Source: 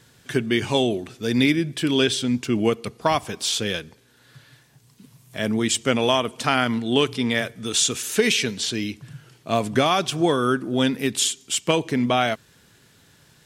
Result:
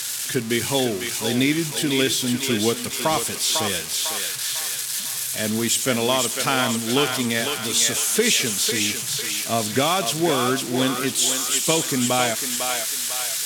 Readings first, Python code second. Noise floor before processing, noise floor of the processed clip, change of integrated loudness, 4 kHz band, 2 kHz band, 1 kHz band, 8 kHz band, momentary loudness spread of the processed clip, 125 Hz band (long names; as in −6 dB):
−56 dBFS, −29 dBFS, +1.5 dB, +3.0 dB, +1.5 dB, 0.0 dB, +8.0 dB, 5 LU, −1.5 dB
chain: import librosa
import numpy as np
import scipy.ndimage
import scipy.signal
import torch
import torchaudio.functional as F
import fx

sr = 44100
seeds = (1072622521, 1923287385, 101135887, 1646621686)

y = x + 0.5 * 10.0 ** (-15.0 / 20.0) * np.diff(np.sign(x), prepend=np.sign(x[:1]))
y = scipy.signal.sosfilt(scipy.signal.butter(2, 11000.0, 'lowpass', fs=sr, output='sos'), y)
y = fx.echo_thinned(y, sr, ms=500, feedback_pct=57, hz=650.0, wet_db=-4)
y = F.gain(torch.from_numpy(y), -1.5).numpy()